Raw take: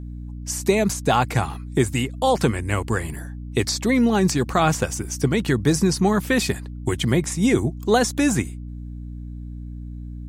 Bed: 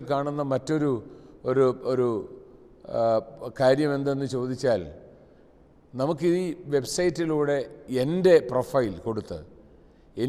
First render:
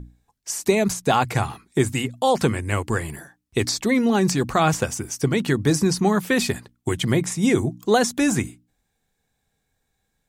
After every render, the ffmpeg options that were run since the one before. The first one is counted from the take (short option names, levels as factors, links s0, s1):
-af "bandreject=f=60:t=h:w=6,bandreject=f=120:t=h:w=6,bandreject=f=180:t=h:w=6,bandreject=f=240:t=h:w=6,bandreject=f=300:t=h:w=6"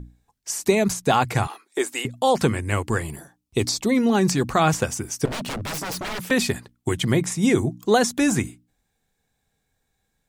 -filter_complex "[0:a]asettb=1/sr,asplit=3[s0][s1][s2];[s0]atrim=end=1.474[s3];[s1]atrim=start=1.47:end=2.05,asetpts=PTS-STARTPTS,afade=t=in:d=0.004:c=qsin,afade=t=out:st=0.576:d=0.004:c=qsin,highpass=f=370:w=0.5412,highpass=f=370:w=1.3066[s4];[s2]atrim=start=2.046[s5];[s3][s4]acrossfade=d=0.004:c1=hsin:c2=qsin[s6];[s6][s5]acrossfade=d=0.004:c1=qsin:c2=hsin,asettb=1/sr,asplit=3[s7][s8][s9];[s7]atrim=end=3.024[s10];[s8]atrim=start=3.02:end=3.97,asetpts=PTS-STARTPTS,afade=t=in:d=0.004:c=qsin,afade=t=out:st=0.946:d=0.004:c=qsin,equalizer=f=1700:t=o:w=0.63:g=-8.5[s11];[s9]atrim=start=3.966[s12];[s10][s11]acrossfade=d=0.004:c1=hsin:c2=qsin[s13];[s13][s12]acrossfade=d=0.004:c1=qsin:c2=hsin,asettb=1/sr,asplit=3[s14][s15][s16];[s14]atrim=end=5.254[s17];[s15]atrim=start=5.25:end=6.31,asetpts=PTS-STARTPTS,afade=t=in:d=0.004:c=qsin,afade=t=out:st=1.056:d=0.004:c=qsin,aeval=exprs='0.0596*(abs(mod(val(0)/0.0596+3,4)-2)-1)':c=same[s18];[s16]atrim=start=6.306[s19];[s17][s18]acrossfade=d=0.004:c1=hsin:c2=qsin[s20];[s20][s19]acrossfade=d=0.004:c1=qsin:c2=hsin"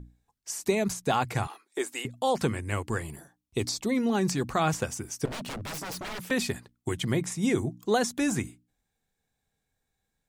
-af "volume=0.447"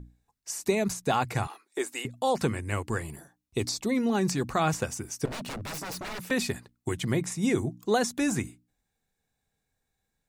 -af "bandreject=f=3200:w=19"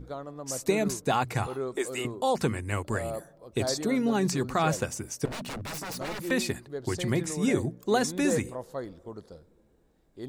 -filter_complex "[1:a]volume=0.237[s0];[0:a][s0]amix=inputs=2:normalize=0"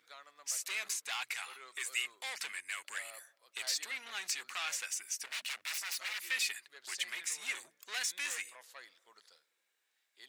-af "asoftclip=type=tanh:threshold=0.0501,highpass=f=2200:t=q:w=1.6"